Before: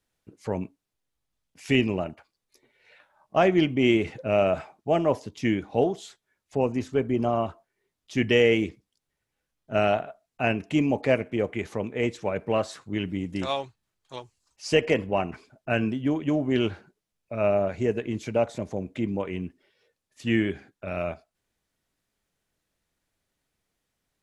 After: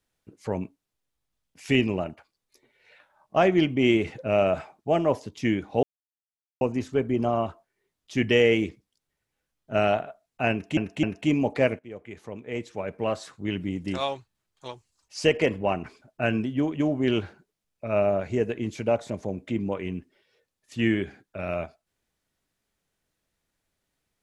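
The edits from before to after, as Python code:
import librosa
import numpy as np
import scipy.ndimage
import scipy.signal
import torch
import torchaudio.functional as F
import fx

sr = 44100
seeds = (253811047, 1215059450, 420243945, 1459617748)

y = fx.edit(x, sr, fx.silence(start_s=5.83, length_s=0.78),
    fx.repeat(start_s=10.51, length_s=0.26, count=3),
    fx.fade_in_from(start_s=11.27, length_s=1.8, floor_db=-17.5), tone=tone)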